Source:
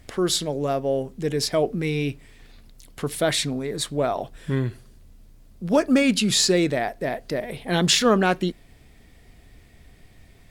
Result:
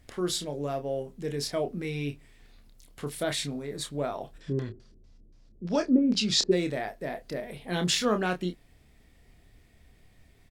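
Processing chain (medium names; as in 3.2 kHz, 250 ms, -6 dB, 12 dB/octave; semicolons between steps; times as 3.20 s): 4.37–6.51 s: LFO low-pass square 5.9 Hz -> 1.5 Hz 380–5300 Hz; doubling 28 ms -7.5 dB; trim -8.5 dB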